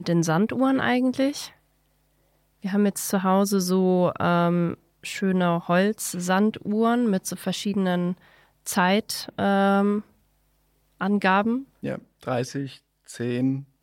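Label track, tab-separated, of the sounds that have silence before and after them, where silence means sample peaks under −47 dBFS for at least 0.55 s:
2.620000	10.060000	sound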